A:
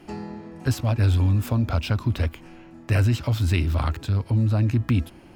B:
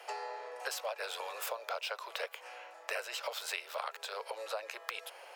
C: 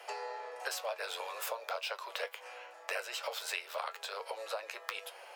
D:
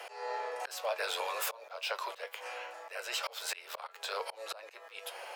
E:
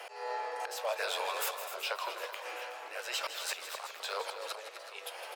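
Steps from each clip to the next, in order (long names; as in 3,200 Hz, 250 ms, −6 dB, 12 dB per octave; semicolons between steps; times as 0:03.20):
Butterworth high-pass 460 Hz 72 dB per octave; downward compressor 4 to 1, threshold −40 dBFS, peak gain reduction 13 dB; level +3.5 dB
flanger 0.41 Hz, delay 9.9 ms, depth 1.4 ms, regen +60%; level +4.5 dB
volume swells 263 ms; in parallel at −2.5 dB: brickwall limiter −33.5 dBFS, peak gain reduction 7.5 dB; on the sum: level +1.5 dB
on a send: loudspeakers that aren't time-aligned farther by 55 metres −11 dB, 87 metres −11 dB; on the sum: feedback echo with a swinging delay time 378 ms, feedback 64%, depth 147 cents, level −13.5 dB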